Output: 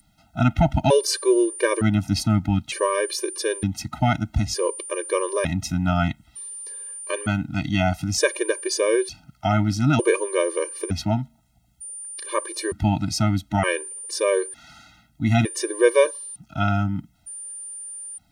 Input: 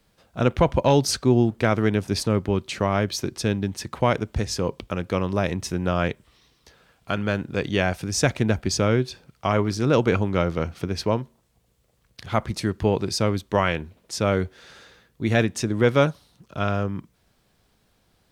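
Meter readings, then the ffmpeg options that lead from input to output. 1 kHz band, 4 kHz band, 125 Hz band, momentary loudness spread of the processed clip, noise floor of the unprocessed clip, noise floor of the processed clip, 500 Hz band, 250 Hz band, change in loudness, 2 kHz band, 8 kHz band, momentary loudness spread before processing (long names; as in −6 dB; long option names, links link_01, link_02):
+0.5 dB, +0.5 dB, +0.5 dB, 13 LU, −66 dBFS, −61 dBFS, +1.0 dB, +0.5 dB, +0.5 dB, +0.5 dB, +5.5 dB, 9 LU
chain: -af "aeval=exprs='val(0)+0.0141*sin(2*PI*9200*n/s)':channel_layout=same,afftfilt=real='re*gt(sin(2*PI*0.55*pts/sr)*(1-2*mod(floor(b*sr/1024/310),2)),0)':imag='im*gt(sin(2*PI*0.55*pts/sr)*(1-2*mod(floor(b*sr/1024/310),2)),0)':win_size=1024:overlap=0.75,volume=4dB"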